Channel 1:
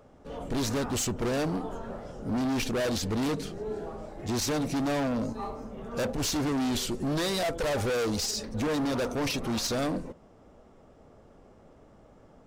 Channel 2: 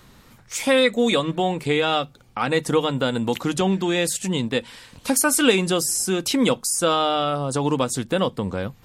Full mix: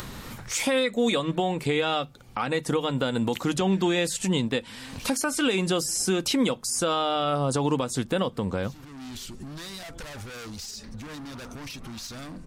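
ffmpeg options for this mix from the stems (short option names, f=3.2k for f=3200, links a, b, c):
-filter_complex "[0:a]equalizer=f=500:t=o:w=1.5:g=-12,acompressor=threshold=-35dB:ratio=6,adelay=2400,volume=-10dB[a];[1:a]acrossover=split=7100[b][c];[c]acompressor=threshold=-33dB:ratio=4:attack=1:release=60[d];[b][d]amix=inputs=2:normalize=0,volume=1.5dB,asplit=2[e][f];[f]apad=whole_len=655744[g];[a][g]sidechaincompress=threshold=-31dB:ratio=8:attack=32:release=108[h];[h][e]amix=inputs=2:normalize=0,acompressor=mode=upward:threshold=-29dB:ratio=2.5,alimiter=limit=-15dB:level=0:latency=1:release=264"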